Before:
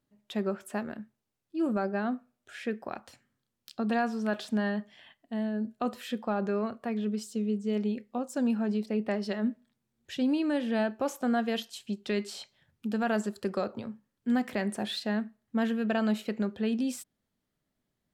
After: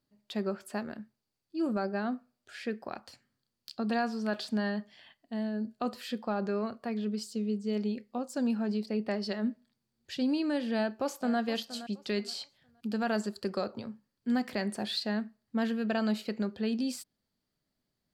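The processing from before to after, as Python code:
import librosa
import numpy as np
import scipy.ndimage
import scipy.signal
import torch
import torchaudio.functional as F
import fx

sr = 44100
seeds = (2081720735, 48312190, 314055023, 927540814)

y = fx.echo_throw(x, sr, start_s=10.76, length_s=0.63, ms=470, feedback_pct=25, wet_db=-14.0)
y = fx.peak_eq(y, sr, hz=4600.0, db=12.0, octaves=0.25)
y = y * librosa.db_to_amplitude(-2.0)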